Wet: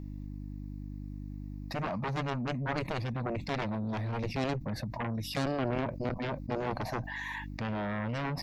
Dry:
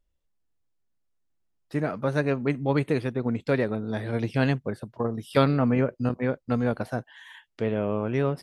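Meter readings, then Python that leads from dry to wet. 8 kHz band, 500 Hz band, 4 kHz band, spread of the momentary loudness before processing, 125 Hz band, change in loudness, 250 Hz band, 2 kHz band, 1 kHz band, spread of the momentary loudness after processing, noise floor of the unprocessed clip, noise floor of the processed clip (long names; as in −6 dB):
can't be measured, −10.0 dB, −1.0 dB, 8 LU, −6.5 dB, −8.5 dB, −8.5 dB, −4.0 dB, −2.5 dB, 10 LU, −74 dBFS, −42 dBFS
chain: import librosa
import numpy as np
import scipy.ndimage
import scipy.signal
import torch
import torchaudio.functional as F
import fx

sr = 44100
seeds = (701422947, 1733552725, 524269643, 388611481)

y = fx.peak_eq(x, sr, hz=6400.0, db=-5.0, octaves=2.0)
y = fx.fixed_phaser(y, sr, hz=2100.0, stages=8)
y = fx.dynamic_eq(y, sr, hz=1900.0, q=2.5, threshold_db=-53.0, ratio=4.0, max_db=-6)
y = fx.dmg_buzz(y, sr, base_hz=50.0, harmonics=6, level_db=-64.0, tilt_db=-4, odd_only=False)
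y = fx.cheby_harmonics(y, sr, harmonics=(7,), levels_db=(-9,), full_scale_db=-14.5)
y = fx.env_flatten(y, sr, amount_pct=70)
y = y * 10.0 ** (-9.0 / 20.0)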